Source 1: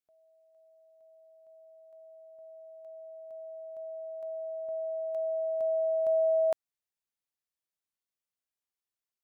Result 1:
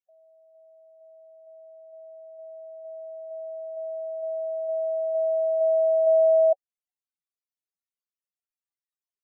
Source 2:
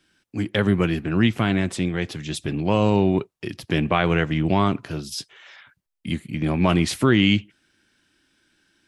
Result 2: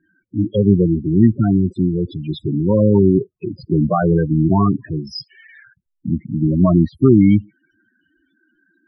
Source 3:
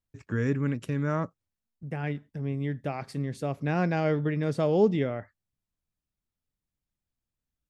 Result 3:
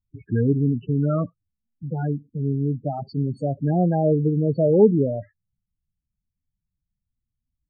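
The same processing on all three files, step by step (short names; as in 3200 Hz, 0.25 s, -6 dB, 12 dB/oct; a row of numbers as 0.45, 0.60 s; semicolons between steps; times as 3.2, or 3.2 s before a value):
loudest bins only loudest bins 8; treble ducked by the level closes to 1500 Hz, closed at -21.5 dBFS; gain +7.5 dB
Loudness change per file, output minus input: +7.5, +5.5, +7.0 LU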